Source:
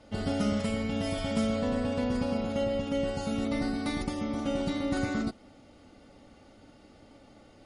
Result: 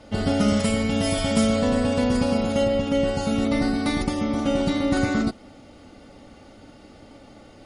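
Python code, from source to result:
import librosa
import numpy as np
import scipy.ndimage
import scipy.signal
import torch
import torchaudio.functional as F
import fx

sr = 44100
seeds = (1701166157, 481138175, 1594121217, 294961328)

y = fx.high_shelf(x, sr, hz=7200.0, db=11.0, at=(0.48, 2.68))
y = y * 10.0 ** (8.0 / 20.0)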